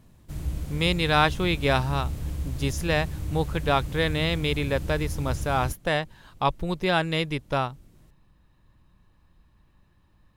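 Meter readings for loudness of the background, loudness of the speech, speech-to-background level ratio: -34.0 LUFS, -26.0 LUFS, 8.0 dB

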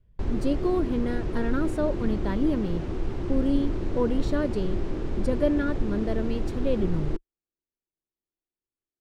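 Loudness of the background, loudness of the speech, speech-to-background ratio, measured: -32.5 LUFS, -29.0 LUFS, 3.5 dB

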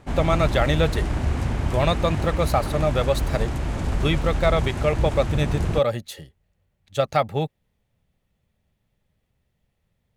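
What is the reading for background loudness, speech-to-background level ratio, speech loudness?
-26.5 LUFS, 2.5 dB, -24.0 LUFS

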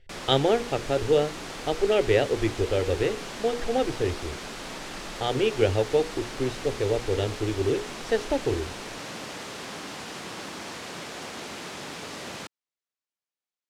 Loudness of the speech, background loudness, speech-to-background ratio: -26.5 LUFS, -36.5 LUFS, 10.0 dB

